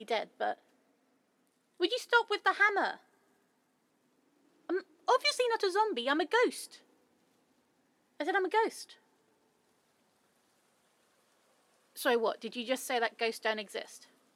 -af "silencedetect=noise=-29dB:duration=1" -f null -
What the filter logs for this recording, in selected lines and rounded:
silence_start: 0.52
silence_end: 1.82 | silence_duration: 1.30
silence_start: 2.91
silence_end: 4.70 | silence_duration: 1.79
silence_start: 6.48
silence_end: 8.21 | silence_duration: 1.72
silence_start: 8.67
silence_end: 12.02 | silence_duration: 3.34